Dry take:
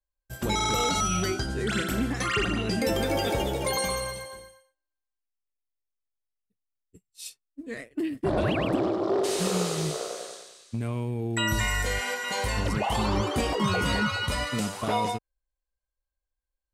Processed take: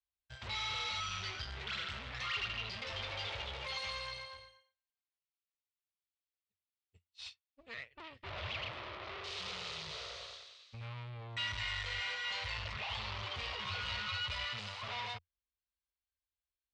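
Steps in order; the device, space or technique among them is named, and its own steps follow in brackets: scooped metal amplifier (valve stage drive 35 dB, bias 0.75; cabinet simulation 81–4000 Hz, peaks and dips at 87 Hz +8 dB, 170 Hz -9 dB, 760 Hz -4 dB, 1.6 kHz -6 dB; amplifier tone stack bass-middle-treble 10-0-10); trim +7 dB

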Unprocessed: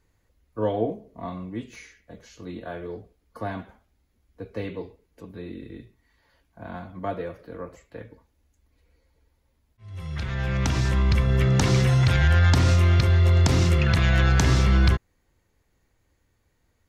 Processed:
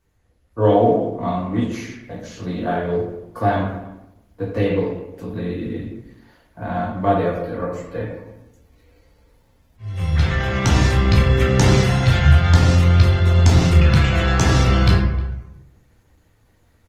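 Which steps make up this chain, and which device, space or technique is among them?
speakerphone in a meeting room (reverberation RT60 0.90 s, pre-delay 9 ms, DRR -3 dB; speakerphone echo 310 ms, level -22 dB; level rider gain up to 8.5 dB; trim -1 dB; Opus 20 kbps 48 kHz)

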